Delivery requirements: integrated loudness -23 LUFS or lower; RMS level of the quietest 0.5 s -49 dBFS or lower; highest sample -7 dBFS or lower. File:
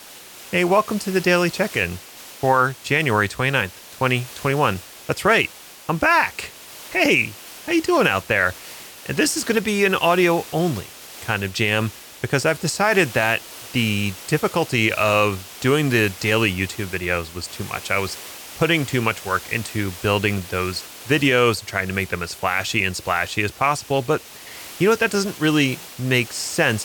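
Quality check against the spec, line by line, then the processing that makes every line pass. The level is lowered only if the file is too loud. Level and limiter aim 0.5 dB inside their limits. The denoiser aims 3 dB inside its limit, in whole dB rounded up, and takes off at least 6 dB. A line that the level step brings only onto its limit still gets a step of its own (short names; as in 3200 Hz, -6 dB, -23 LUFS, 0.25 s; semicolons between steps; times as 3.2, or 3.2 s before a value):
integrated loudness -20.5 LUFS: fail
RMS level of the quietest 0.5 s -41 dBFS: fail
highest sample -5.5 dBFS: fail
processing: denoiser 8 dB, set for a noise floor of -41 dBFS; gain -3 dB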